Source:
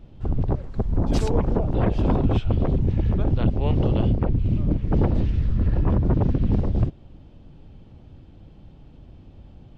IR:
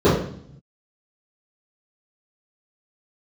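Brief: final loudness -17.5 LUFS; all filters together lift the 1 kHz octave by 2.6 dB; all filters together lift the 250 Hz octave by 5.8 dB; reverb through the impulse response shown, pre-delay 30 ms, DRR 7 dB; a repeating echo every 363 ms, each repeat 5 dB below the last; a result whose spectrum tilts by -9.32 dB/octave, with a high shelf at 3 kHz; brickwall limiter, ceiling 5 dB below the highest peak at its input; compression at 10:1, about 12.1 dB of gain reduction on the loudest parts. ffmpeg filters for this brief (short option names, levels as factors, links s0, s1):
-filter_complex "[0:a]equalizer=f=250:t=o:g=7.5,equalizer=f=1000:t=o:g=3.5,highshelf=f=3000:g=-5.5,acompressor=threshold=0.0562:ratio=10,alimiter=limit=0.0794:level=0:latency=1,aecho=1:1:363|726|1089|1452|1815|2178|2541:0.562|0.315|0.176|0.0988|0.0553|0.031|0.0173,asplit=2[s0][s1];[1:a]atrim=start_sample=2205,adelay=30[s2];[s1][s2]afir=irnorm=-1:irlink=0,volume=0.0251[s3];[s0][s3]amix=inputs=2:normalize=0,volume=3.16"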